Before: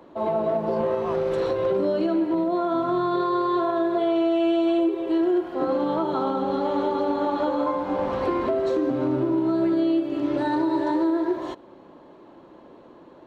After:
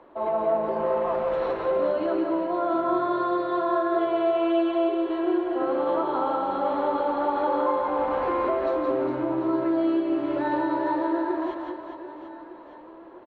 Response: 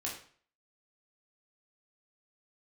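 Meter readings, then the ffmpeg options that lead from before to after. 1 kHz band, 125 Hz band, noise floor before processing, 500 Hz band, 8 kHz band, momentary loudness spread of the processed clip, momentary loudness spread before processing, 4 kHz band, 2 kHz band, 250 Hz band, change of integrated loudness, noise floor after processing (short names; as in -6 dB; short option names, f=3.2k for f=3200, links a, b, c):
+1.5 dB, -8.5 dB, -49 dBFS, -1.0 dB, n/a, 5 LU, 4 LU, -4.5 dB, +1.5 dB, -3.5 dB, -1.5 dB, -45 dBFS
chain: -filter_complex "[0:a]lowpass=2.3k,equalizer=f=150:w=0.58:g=-13.5,asplit=2[a][b];[b]aecho=0:1:170|408|741.2|1208|1861:0.631|0.398|0.251|0.158|0.1[c];[a][c]amix=inputs=2:normalize=0,volume=1dB"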